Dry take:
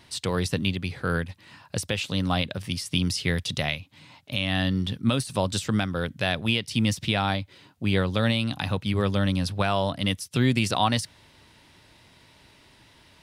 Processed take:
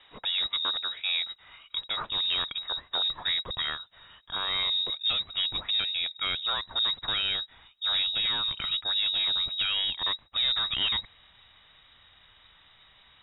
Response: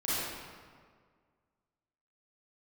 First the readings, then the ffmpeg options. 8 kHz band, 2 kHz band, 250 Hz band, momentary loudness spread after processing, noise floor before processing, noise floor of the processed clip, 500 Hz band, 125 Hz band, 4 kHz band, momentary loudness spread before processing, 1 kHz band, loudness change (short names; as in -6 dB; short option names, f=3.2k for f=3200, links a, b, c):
under -40 dB, -5.0 dB, -27.0 dB, 7 LU, -56 dBFS, -59 dBFS, -18.0 dB, -25.5 dB, +6.0 dB, 6 LU, -8.0 dB, -1.0 dB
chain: -af "aeval=exprs='0.335*(cos(1*acos(clip(val(0)/0.335,-1,1)))-cos(1*PI/2))+0.0668*(cos(5*acos(clip(val(0)/0.335,-1,1)))-cos(5*PI/2))':c=same,lowpass=f=3.3k:t=q:w=0.5098,lowpass=f=3.3k:t=q:w=0.6013,lowpass=f=3.3k:t=q:w=0.9,lowpass=f=3.3k:t=q:w=2.563,afreqshift=-3900,asubboost=boost=4.5:cutoff=150,volume=-7.5dB"